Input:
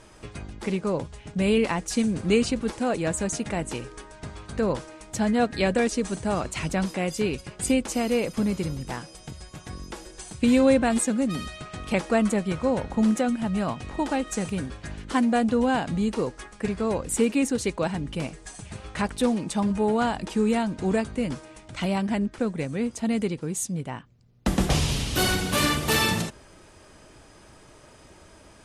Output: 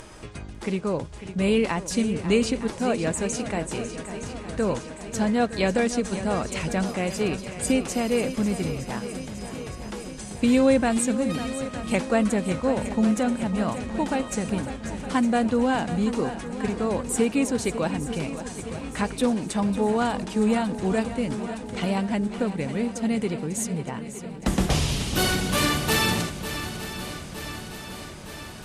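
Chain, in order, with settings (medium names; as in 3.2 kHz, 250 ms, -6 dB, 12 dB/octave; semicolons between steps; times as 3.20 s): upward compressor, threshold -37 dBFS; on a send: shuffle delay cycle 914 ms, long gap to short 1.5:1, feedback 61%, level -12 dB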